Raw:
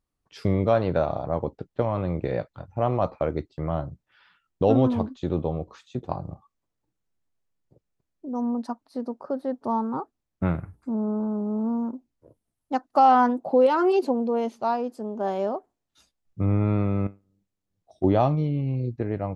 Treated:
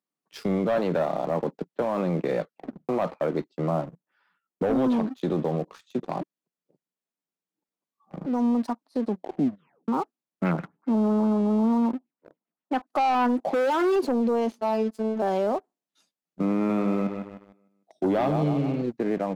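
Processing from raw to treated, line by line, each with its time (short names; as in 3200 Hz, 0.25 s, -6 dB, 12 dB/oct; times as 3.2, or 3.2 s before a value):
0.77–1.8 HPF 110 Hz 24 dB/oct
2.41 tape stop 0.48 s
3.55–4.77 bell 3400 Hz -11 dB 1.5 oct
6.21–8.26 reverse
9 tape stop 0.88 s
10.45–12.87 LFO low-pass sine 7.5 Hz 880–2800 Hz
13.4–13.96 hard clip -22 dBFS
14.58–15.22 robotiser 219 Hz
16.54–18.82 feedback echo 0.152 s, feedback 46%, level -10 dB
whole clip: steep high-pass 160 Hz 48 dB/oct; sample leveller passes 2; limiter -15.5 dBFS; gain -2 dB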